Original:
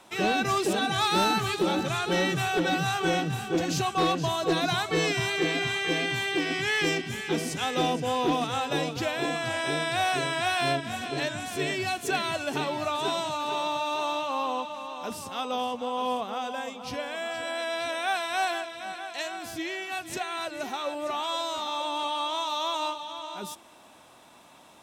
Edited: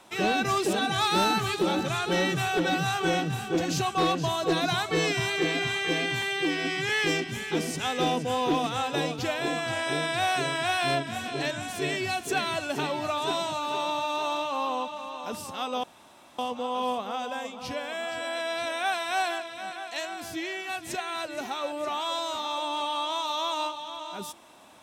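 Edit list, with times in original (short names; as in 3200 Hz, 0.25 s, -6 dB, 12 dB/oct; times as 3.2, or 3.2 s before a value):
6.22–6.67 stretch 1.5×
15.61 insert room tone 0.55 s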